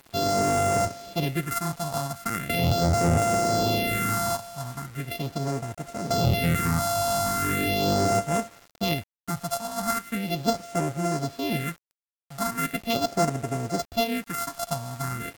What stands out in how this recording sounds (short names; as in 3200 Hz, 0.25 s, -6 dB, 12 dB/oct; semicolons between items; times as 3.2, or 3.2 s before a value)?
a buzz of ramps at a fixed pitch in blocks of 64 samples; phasing stages 4, 0.39 Hz, lowest notch 370–3800 Hz; a quantiser's noise floor 8-bit, dither none; SBC